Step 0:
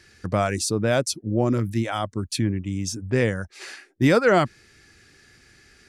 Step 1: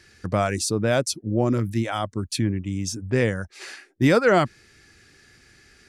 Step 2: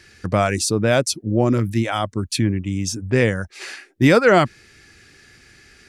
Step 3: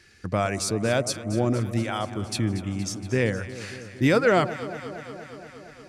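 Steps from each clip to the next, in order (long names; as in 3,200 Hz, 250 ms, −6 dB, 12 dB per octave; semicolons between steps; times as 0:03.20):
no processing that can be heard
parametric band 2,500 Hz +2.5 dB; level +4 dB
delay that swaps between a low-pass and a high-pass 117 ms, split 910 Hz, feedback 85%, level −12.5 dB; level −6.5 dB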